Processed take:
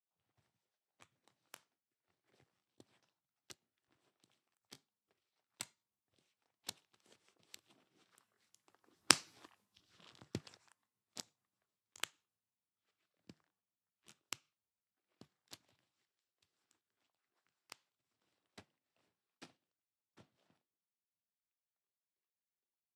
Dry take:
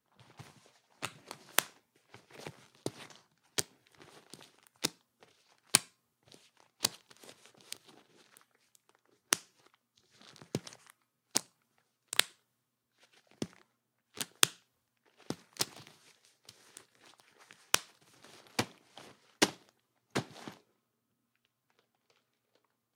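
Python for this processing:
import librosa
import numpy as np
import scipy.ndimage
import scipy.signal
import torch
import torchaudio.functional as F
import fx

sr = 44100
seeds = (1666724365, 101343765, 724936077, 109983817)

y = fx.pitch_heads(x, sr, semitones=-2.5)
y = fx.doppler_pass(y, sr, speed_mps=8, closest_m=1.7, pass_at_s=9.3)
y = y * librosa.db_to_amplitude(6.5)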